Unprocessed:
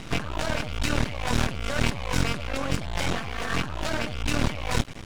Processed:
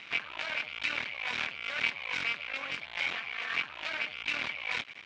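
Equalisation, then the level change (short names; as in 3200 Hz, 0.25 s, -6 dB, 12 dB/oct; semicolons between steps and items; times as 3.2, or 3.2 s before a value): band-pass 2700 Hz, Q 1.2; air absorption 110 m; bell 2300 Hz +7 dB 0.27 oct; 0.0 dB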